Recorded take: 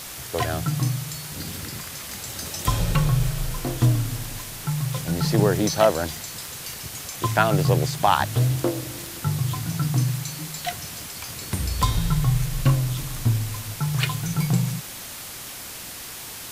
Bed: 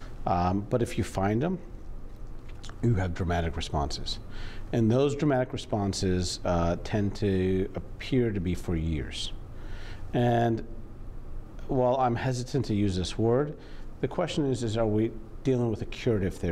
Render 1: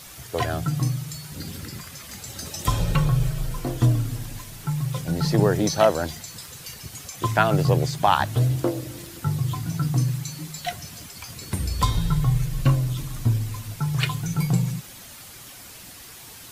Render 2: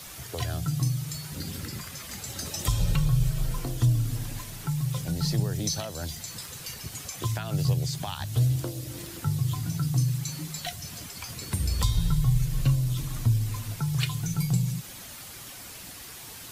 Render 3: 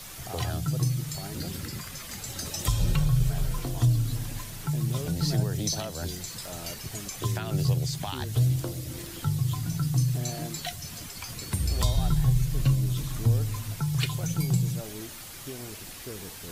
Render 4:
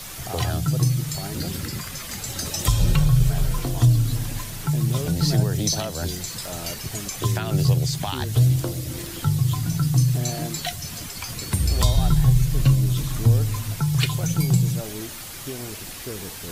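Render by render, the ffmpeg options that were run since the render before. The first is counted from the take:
-af "afftdn=nr=8:nf=-37"
-filter_complex "[0:a]alimiter=limit=-9.5dB:level=0:latency=1:release=209,acrossover=split=150|3000[a][b][c];[b]acompressor=threshold=-36dB:ratio=6[d];[a][d][c]amix=inputs=3:normalize=0"
-filter_complex "[1:a]volume=-15dB[a];[0:a][a]amix=inputs=2:normalize=0"
-af "volume=6dB"

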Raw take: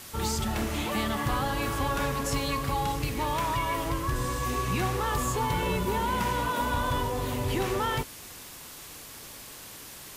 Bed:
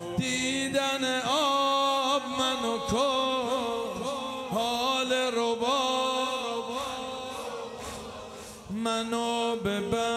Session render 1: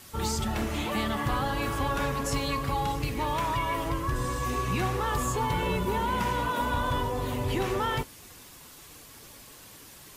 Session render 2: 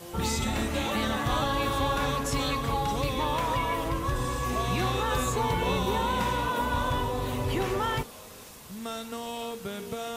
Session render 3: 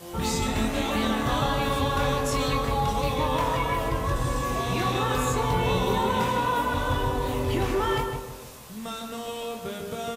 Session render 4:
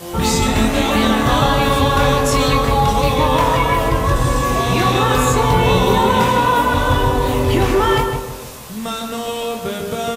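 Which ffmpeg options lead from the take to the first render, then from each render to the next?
-af "afftdn=nr=6:nf=-45"
-filter_complex "[1:a]volume=-7.5dB[a];[0:a][a]amix=inputs=2:normalize=0"
-filter_complex "[0:a]asplit=2[a][b];[b]adelay=23,volume=-5.5dB[c];[a][c]amix=inputs=2:normalize=0,asplit=2[d][e];[e]adelay=156,lowpass=f=1.3k:p=1,volume=-3dB,asplit=2[f][g];[g]adelay=156,lowpass=f=1.3k:p=1,volume=0.41,asplit=2[h][i];[i]adelay=156,lowpass=f=1.3k:p=1,volume=0.41,asplit=2[j][k];[k]adelay=156,lowpass=f=1.3k:p=1,volume=0.41,asplit=2[l][m];[m]adelay=156,lowpass=f=1.3k:p=1,volume=0.41[n];[d][f][h][j][l][n]amix=inputs=6:normalize=0"
-af "volume=10.5dB"

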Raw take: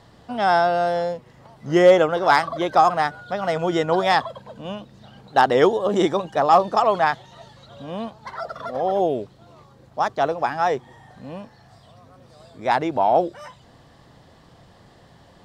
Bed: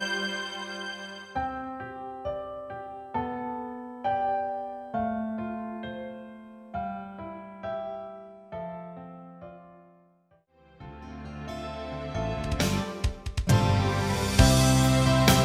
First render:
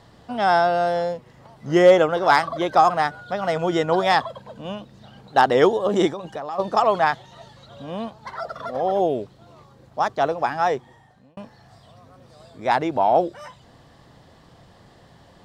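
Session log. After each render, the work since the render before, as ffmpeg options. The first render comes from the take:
-filter_complex "[0:a]asplit=3[a][b][c];[a]afade=t=out:st=6.1:d=0.02[d];[b]acompressor=threshold=-27dB:ratio=8:attack=3.2:release=140:knee=1:detection=peak,afade=t=in:st=6.1:d=0.02,afade=t=out:st=6.58:d=0.02[e];[c]afade=t=in:st=6.58:d=0.02[f];[d][e][f]amix=inputs=3:normalize=0,asplit=2[g][h];[g]atrim=end=11.37,asetpts=PTS-STARTPTS,afade=t=out:st=10.68:d=0.69[i];[h]atrim=start=11.37,asetpts=PTS-STARTPTS,afade=t=in:d=0.004:c=hsin[j];[i][j]concat=n=2:v=0:a=1"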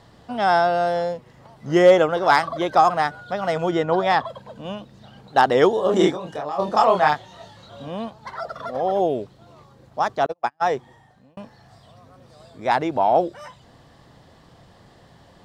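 -filter_complex "[0:a]asettb=1/sr,asplit=3[a][b][c];[a]atrim=end=3.714[d];[b]atrim=start=3.71:end=4.25,asetpts=PTS-STARTPTS,afade=t=in:d=0.004:c=qsin,afade=t=out:st=0.536:d=0.004:c=qsin,lowpass=f=2.8k:p=1[e];[c]atrim=start=4.246[f];[d][e]acrossfade=d=0.004:c1=hsin:c2=qsin[g];[g][f]acrossfade=d=0.004:c1=qsin:c2=hsin,asettb=1/sr,asplit=3[h][i][j];[h]atrim=end=5.754[k];[i]atrim=start=5.75:end=7.88,asetpts=PTS-STARTPTS,afade=t=in:d=0.004:c=qsin,afade=t=out:st=2.126:d=0.004:c=qsin,asplit=2[l][m];[m]adelay=27,volume=-2.5dB[n];[l][n]amix=inputs=2:normalize=0,atrim=end_sample=93933[o];[j]atrim=start=7.876[p];[k][o]acrossfade=d=0.004:c1=hsin:c2=qsin[q];[q][p]acrossfade=d=0.004:c1=qsin:c2=hsin,asettb=1/sr,asplit=3[r][s][t];[r]atrim=end=10.264[u];[s]atrim=start=10.26:end=10.69,asetpts=PTS-STARTPTS,afade=t=in:d=0.004:c=qsin,afade=t=out:st=0.426:d=0.004:c=qsin,agate=range=-41dB:threshold=-22dB:ratio=16:release=100:detection=peak[v];[t]atrim=start=10.686[w];[u][v]acrossfade=d=0.004:c1=hsin:c2=qsin[x];[x][w]acrossfade=d=0.004:c1=qsin:c2=hsin"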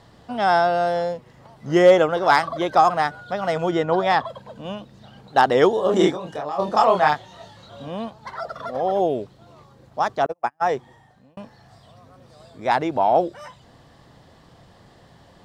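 -filter_complex "[0:a]asettb=1/sr,asplit=3[a][b][c];[a]atrim=end=10.224[d];[b]atrim=start=10.22:end=10.69,asetpts=PTS-STARTPTS,afade=t=in:d=0.004:c=qsin,afade=t=out:st=0.466:d=0.004:c=qsin,equalizer=f=3.9k:w=1.9:g=-10.5[e];[c]atrim=start=10.686[f];[d][e]acrossfade=d=0.004:c1=hsin:c2=qsin[g];[g][f]acrossfade=d=0.004:c1=qsin:c2=hsin"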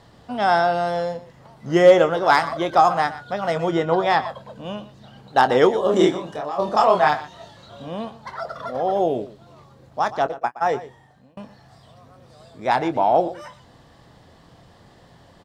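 -filter_complex "[0:a]asplit=2[a][b];[b]adelay=24,volume=-12.5dB[c];[a][c]amix=inputs=2:normalize=0,aecho=1:1:120:0.168"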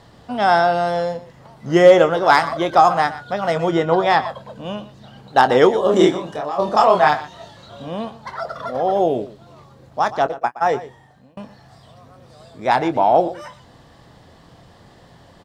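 -af "volume=3dB,alimiter=limit=-1dB:level=0:latency=1"

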